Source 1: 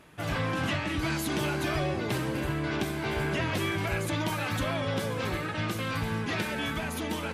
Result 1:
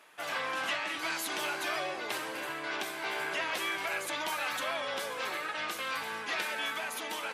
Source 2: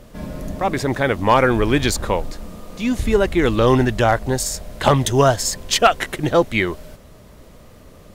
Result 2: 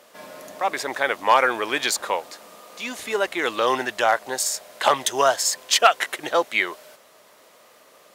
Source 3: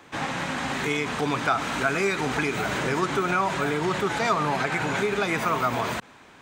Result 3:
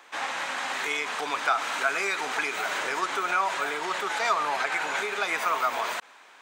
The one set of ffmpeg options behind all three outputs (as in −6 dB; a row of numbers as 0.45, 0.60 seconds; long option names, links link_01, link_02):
-af "highpass=670"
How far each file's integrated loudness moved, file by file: −3.5, −3.5, −2.0 LU